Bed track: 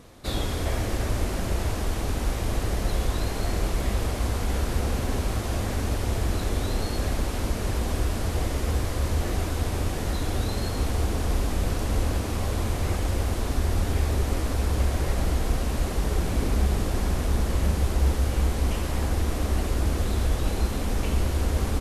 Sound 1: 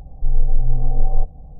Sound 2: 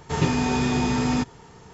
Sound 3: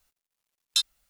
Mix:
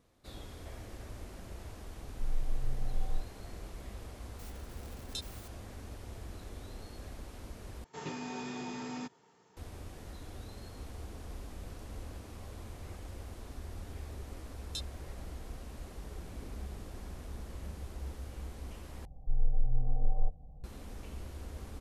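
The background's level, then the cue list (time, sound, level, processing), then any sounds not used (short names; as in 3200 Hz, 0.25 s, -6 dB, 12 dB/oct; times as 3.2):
bed track -19.5 dB
1.97 add 1 -17 dB
4.39 add 3 -18 dB + fast leveller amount 70%
7.84 replace with 2 -16 dB + HPF 210 Hz
13.99 add 3 -17 dB
19.05 replace with 1 -12.5 dB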